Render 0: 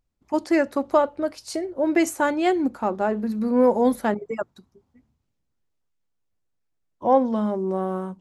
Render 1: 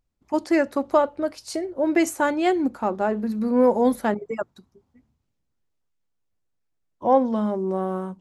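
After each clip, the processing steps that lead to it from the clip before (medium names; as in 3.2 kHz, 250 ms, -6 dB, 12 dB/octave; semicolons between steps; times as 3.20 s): no audible change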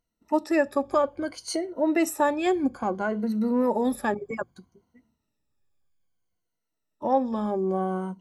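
drifting ripple filter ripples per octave 1.9, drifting -0.61 Hz, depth 15 dB; in parallel at 0 dB: compression, threshold -25 dBFS, peak gain reduction 13 dB; on the sum: trim -7.5 dB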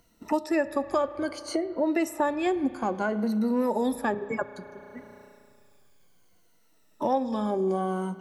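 spring tank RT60 1.8 s, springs 34 ms, chirp 20 ms, DRR 15 dB; three bands compressed up and down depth 70%; trim -2 dB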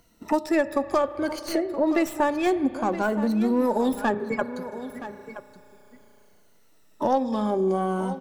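tracing distortion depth 0.06 ms; delay 972 ms -13 dB; trim +3 dB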